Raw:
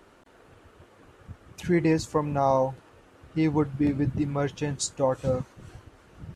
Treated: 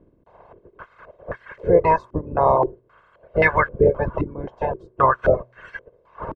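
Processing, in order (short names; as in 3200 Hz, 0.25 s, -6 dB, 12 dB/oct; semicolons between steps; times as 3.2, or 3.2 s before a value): spectral limiter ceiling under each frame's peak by 24 dB; comb 1.9 ms, depth 63%; de-hum 123.3 Hz, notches 3; reverb removal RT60 1.8 s; in parallel at +2.5 dB: compressor, threshold -32 dBFS, peak gain reduction 15 dB; on the sum: stepped low-pass 3.8 Hz 290–1700 Hz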